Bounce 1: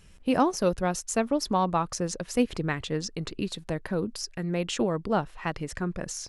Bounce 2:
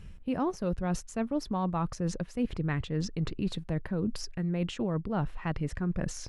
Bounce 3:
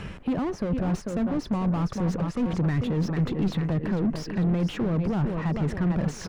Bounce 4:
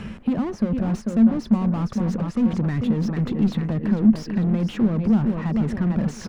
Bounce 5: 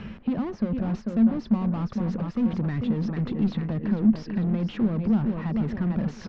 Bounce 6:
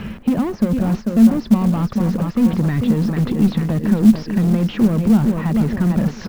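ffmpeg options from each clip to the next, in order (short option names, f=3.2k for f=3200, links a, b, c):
-af "bass=f=250:g=9,treble=f=4k:g=-9,areverse,acompressor=threshold=-29dB:ratio=6,areverse,volume=1.5dB"
-filter_complex "[0:a]aecho=1:1:444|888|1332|1776:0.251|0.108|0.0464|0.02,asplit=2[a][b];[b]highpass=f=720:p=1,volume=31dB,asoftclip=type=tanh:threshold=-17dB[c];[a][c]amix=inputs=2:normalize=0,lowpass=f=1.1k:p=1,volume=-6dB,acrossover=split=290[d][e];[e]acompressor=threshold=-44dB:ratio=2[f];[d][f]amix=inputs=2:normalize=0,volume=3dB"
-af "equalizer=f=220:t=o:w=0.25:g=14"
-af "lowpass=f=5.1k:w=0.5412,lowpass=f=5.1k:w=1.3066,volume=-4dB"
-af "acrusher=bits=7:mode=log:mix=0:aa=0.000001,volume=9dB"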